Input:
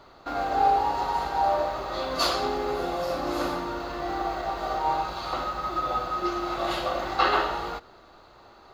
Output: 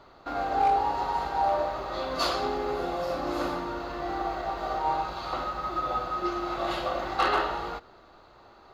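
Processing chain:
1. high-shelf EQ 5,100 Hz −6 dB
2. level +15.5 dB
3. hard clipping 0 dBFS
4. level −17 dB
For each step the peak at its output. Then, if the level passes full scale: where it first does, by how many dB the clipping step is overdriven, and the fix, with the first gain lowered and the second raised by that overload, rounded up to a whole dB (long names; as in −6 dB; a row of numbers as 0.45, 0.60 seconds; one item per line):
−10.0, +5.5, 0.0, −17.0 dBFS
step 2, 5.5 dB
step 2 +9.5 dB, step 4 −11 dB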